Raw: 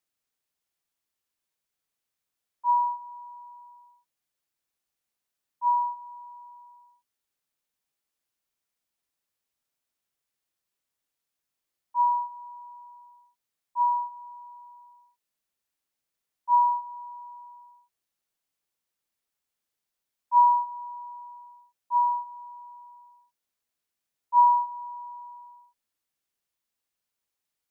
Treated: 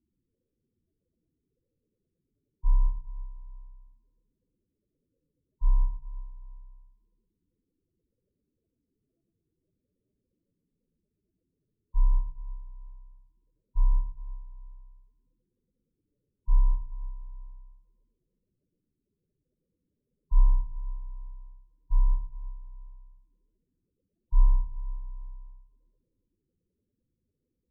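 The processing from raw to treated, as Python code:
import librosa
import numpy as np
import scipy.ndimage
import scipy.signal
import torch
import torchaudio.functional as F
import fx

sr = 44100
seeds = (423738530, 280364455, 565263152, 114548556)

p1 = fx.over_compress(x, sr, threshold_db=-26.0, ratio=-1.0)
p2 = x + F.gain(torch.from_numpy(p1), -1.5).numpy()
p3 = fx.sample_hold(p2, sr, seeds[0], rate_hz=1000.0, jitter_pct=0)
p4 = fx.spec_topn(p3, sr, count=8)
y = fx.echo_feedback(p4, sr, ms=115, feedback_pct=50, wet_db=-7.5)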